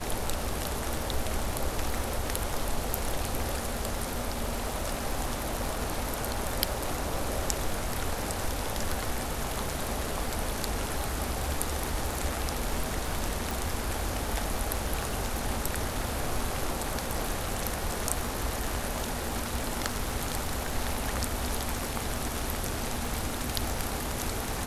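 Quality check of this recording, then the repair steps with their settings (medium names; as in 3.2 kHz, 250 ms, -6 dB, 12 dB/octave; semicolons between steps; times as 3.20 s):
crackle 46 per s -35 dBFS
13.51 s: pop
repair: de-click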